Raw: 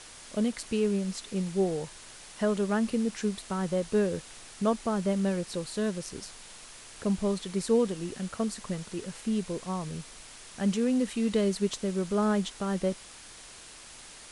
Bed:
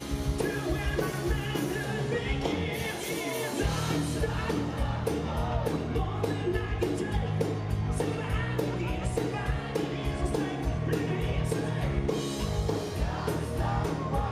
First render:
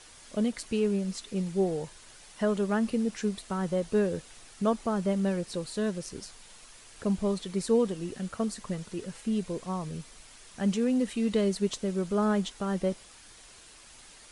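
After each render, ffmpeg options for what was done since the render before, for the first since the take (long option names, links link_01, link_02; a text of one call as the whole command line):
ffmpeg -i in.wav -af "afftdn=noise_reduction=6:noise_floor=-49" out.wav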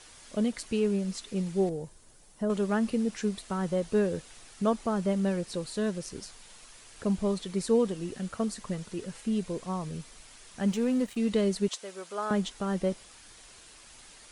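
ffmpeg -i in.wav -filter_complex "[0:a]asettb=1/sr,asplit=3[link_01][link_02][link_03];[link_01]atrim=end=1.694[link_04];[link_02]atrim=start=1.69:end=2.5,asetpts=PTS-STARTPTS,afade=type=in:duration=0.004:curve=qsin,afade=type=out:start_time=0.806:duration=0.004:curve=qsin,equalizer=frequency=2600:width=0.34:gain=-13.5[link_05];[link_03]atrim=start=2.496[link_06];[link_04][link_05]acrossfade=duration=0.004:curve1=hsin:curve2=qsin[link_07];[link_07][link_06]acrossfade=duration=0.004:curve1=qsin:curve2=hsin,asettb=1/sr,asplit=3[link_08][link_09][link_10];[link_08]atrim=end=10.684[link_11];[link_09]atrim=start=10.68:end=11.17,asetpts=PTS-STARTPTS,afade=type=in:duration=0.004:curve=qsin,afade=type=out:start_time=0.486:duration=0.004:curve=qsin,aeval=exprs='sgn(val(0))*max(abs(val(0))-0.00562,0)':channel_layout=same[link_12];[link_10]atrim=start=11.166[link_13];[link_11][link_12]acrossfade=duration=0.004:curve1=hsin:curve2=qsin[link_14];[link_14][link_13]acrossfade=duration=0.004:curve1=qsin:curve2=hsin,asettb=1/sr,asplit=3[link_15][link_16][link_17];[link_15]atrim=end=11.684[link_18];[link_16]atrim=start=11.68:end=12.31,asetpts=PTS-STARTPTS,afade=type=in:duration=0.004:curve=qsin,afade=type=out:start_time=0.626:duration=0.004:curve=qsin,highpass=680[link_19];[link_17]atrim=start=12.306[link_20];[link_18][link_19]acrossfade=duration=0.004:curve1=hsin:curve2=qsin[link_21];[link_21][link_20]acrossfade=duration=0.004:curve1=qsin:curve2=hsin" out.wav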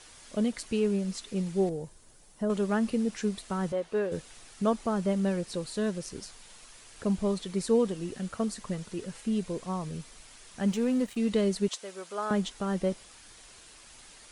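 ffmpeg -i in.wav -filter_complex "[0:a]asettb=1/sr,asplit=3[link_01][link_02][link_03];[link_01]atrim=end=3.724[link_04];[link_02]atrim=start=3.72:end=4.12,asetpts=PTS-STARTPTS,afade=type=in:duration=0.004:curve=qsin,afade=type=out:start_time=0.396:duration=0.004:curve=qsin,bass=frequency=250:gain=-15,treble=frequency=4000:gain=-10[link_05];[link_03]atrim=start=4.116[link_06];[link_04][link_05]acrossfade=duration=0.004:curve1=hsin:curve2=qsin[link_07];[link_07][link_06]acrossfade=duration=0.004:curve1=qsin:curve2=hsin" out.wav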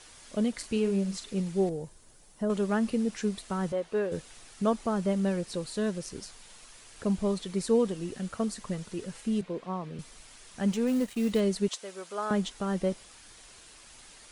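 ffmpeg -i in.wav -filter_complex "[0:a]asettb=1/sr,asplit=3[link_01][link_02][link_03];[link_01]atrim=end=0.564[link_04];[link_02]atrim=start=0.56:end=1.4,asetpts=PTS-STARTPTS,afade=type=in:duration=0.004:curve=qsin,afade=type=out:start_time=0.836:duration=0.004:curve=qsin,asplit=2[link_05][link_06];[link_06]adelay=41,volume=-9.5dB[link_07];[link_05][link_07]amix=inputs=2:normalize=0,atrim=end_sample=37044[link_08];[link_03]atrim=start=1.396[link_09];[link_04][link_08]acrossfade=duration=0.004:curve1=hsin:curve2=qsin[link_10];[link_10][link_09]acrossfade=duration=0.004:curve1=qsin:curve2=hsin,asettb=1/sr,asplit=3[link_11][link_12][link_13];[link_11]atrim=end=9.414[link_14];[link_12]atrim=start=9.41:end=9.99,asetpts=PTS-STARTPTS,afade=type=in:duration=0.004:curve=qsin,afade=type=out:start_time=0.576:duration=0.004:curve=qsin,acrossover=split=150 3800:gain=0.158 1 0.126[link_15][link_16][link_17];[link_15][link_16][link_17]amix=inputs=3:normalize=0[link_18];[link_13]atrim=start=9.986[link_19];[link_14][link_18]acrossfade=duration=0.004:curve1=hsin:curve2=qsin[link_20];[link_20][link_19]acrossfade=duration=0.004:curve1=qsin:curve2=hsin,asettb=1/sr,asplit=3[link_21][link_22][link_23];[link_21]atrim=end=10.874[link_24];[link_22]atrim=start=10.87:end=11.4,asetpts=PTS-STARTPTS,afade=type=in:duration=0.004:curve=qsin,afade=type=out:start_time=0.526:duration=0.004:curve=qsin,acrusher=bits=6:mode=log:mix=0:aa=0.000001[link_25];[link_23]atrim=start=11.396[link_26];[link_24][link_25]acrossfade=duration=0.004:curve1=hsin:curve2=qsin[link_27];[link_27][link_26]acrossfade=duration=0.004:curve1=qsin:curve2=hsin" out.wav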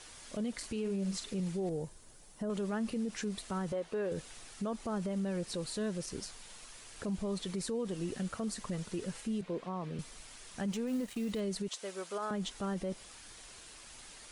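ffmpeg -i in.wav -af "acompressor=threshold=-30dB:ratio=2,alimiter=level_in=4.5dB:limit=-24dB:level=0:latency=1:release=30,volume=-4.5dB" out.wav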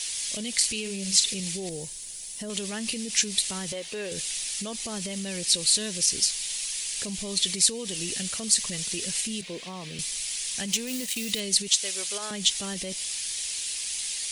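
ffmpeg -i in.wav -af "aexciter=amount=10.4:drive=2.9:freq=2000" out.wav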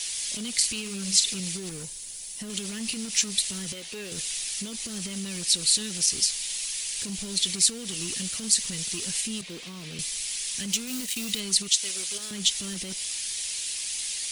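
ffmpeg -i in.wav -filter_complex "[0:a]acrossover=split=430|1700[link_01][link_02][link_03];[link_01]acrusher=bits=5:mode=log:mix=0:aa=0.000001[link_04];[link_02]aeval=exprs='(mod(178*val(0)+1,2)-1)/178':channel_layout=same[link_05];[link_04][link_05][link_03]amix=inputs=3:normalize=0" out.wav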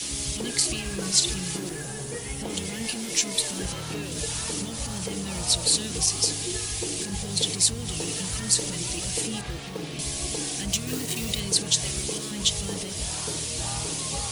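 ffmpeg -i in.wav -i bed.wav -filter_complex "[1:a]volume=-5.5dB[link_01];[0:a][link_01]amix=inputs=2:normalize=0" out.wav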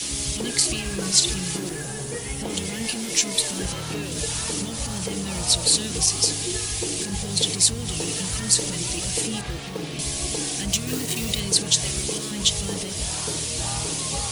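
ffmpeg -i in.wav -af "volume=3dB" out.wav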